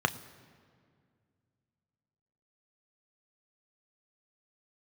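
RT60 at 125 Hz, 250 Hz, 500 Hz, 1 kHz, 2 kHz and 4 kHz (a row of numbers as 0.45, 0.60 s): 3.0, 2.8, 2.3, 2.0, 1.8, 1.4 s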